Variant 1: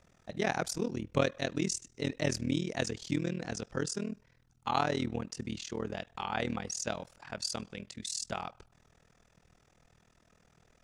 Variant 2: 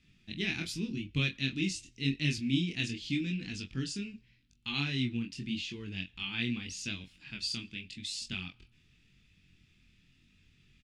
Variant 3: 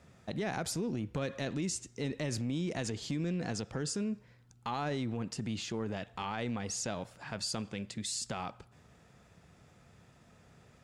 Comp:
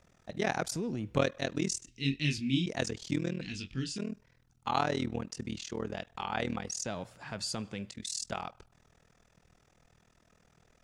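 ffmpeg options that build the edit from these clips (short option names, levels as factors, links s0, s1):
-filter_complex "[2:a]asplit=2[s0][s1];[1:a]asplit=2[s2][s3];[0:a]asplit=5[s4][s5][s6][s7][s8];[s4]atrim=end=0.722[s9];[s0]atrim=start=0.718:end=1.172[s10];[s5]atrim=start=1.168:end=1.882[s11];[s2]atrim=start=1.878:end=2.662[s12];[s6]atrim=start=2.658:end=3.412[s13];[s3]atrim=start=3.408:end=3.982[s14];[s7]atrim=start=3.978:end=6.862[s15];[s1]atrim=start=6.858:end=7.902[s16];[s8]atrim=start=7.898[s17];[s9][s10]acrossfade=d=0.004:c1=hsin:c2=hsin[s18];[s18][s11]acrossfade=d=0.004:c1=hsin:c2=hsin[s19];[s19][s12]acrossfade=d=0.004:c1=hsin:c2=hsin[s20];[s20][s13]acrossfade=d=0.004:c1=hsin:c2=hsin[s21];[s21][s14]acrossfade=d=0.004:c1=hsin:c2=hsin[s22];[s22][s15]acrossfade=d=0.004:c1=hsin:c2=hsin[s23];[s23][s16]acrossfade=d=0.004:c1=hsin:c2=hsin[s24];[s24][s17]acrossfade=d=0.004:c1=hsin:c2=hsin"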